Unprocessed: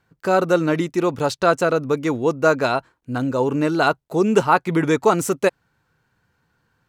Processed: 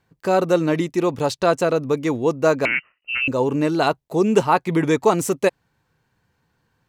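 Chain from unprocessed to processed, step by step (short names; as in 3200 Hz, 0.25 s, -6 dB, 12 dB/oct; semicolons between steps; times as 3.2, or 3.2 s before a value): bell 1400 Hz -7.5 dB 0.28 oct; 2.65–3.28 inverted band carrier 2900 Hz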